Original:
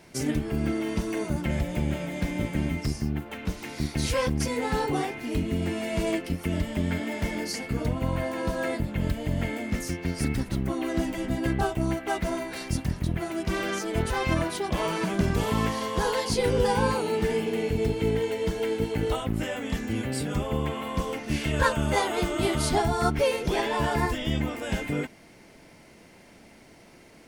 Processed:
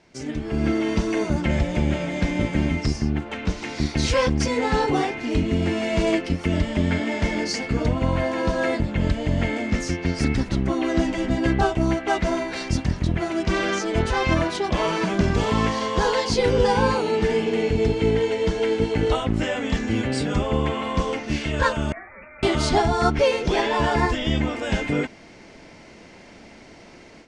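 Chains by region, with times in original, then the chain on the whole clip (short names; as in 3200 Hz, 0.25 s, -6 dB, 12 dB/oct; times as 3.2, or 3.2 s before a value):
21.92–22.43 differentiator + inverted band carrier 2700 Hz
whole clip: LPF 7000 Hz 24 dB/oct; bell 140 Hz -3 dB 0.74 oct; AGC gain up to 11.5 dB; gain -4.5 dB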